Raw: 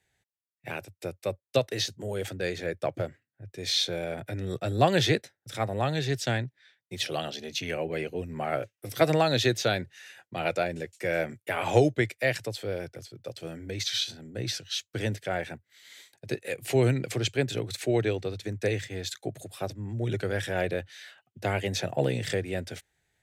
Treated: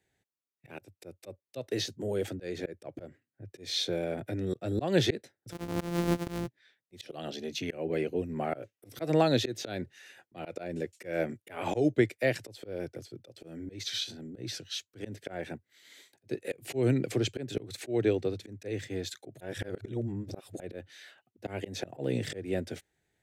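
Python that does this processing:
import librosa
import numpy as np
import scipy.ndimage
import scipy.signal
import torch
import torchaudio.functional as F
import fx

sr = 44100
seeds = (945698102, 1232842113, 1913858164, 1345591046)

y = fx.sample_sort(x, sr, block=256, at=(5.51, 6.46), fade=0.02)
y = fx.edit(y, sr, fx.reverse_span(start_s=19.41, length_s=1.19), tone=tone)
y = fx.peak_eq(y, sr, hz=300.0, db=9.5, octaves=1.8)
y = fx.auto_swell(y, sr, attack_ms=191.0)
y = F.gain(torch.from_numpy(y), -5.0).numpy()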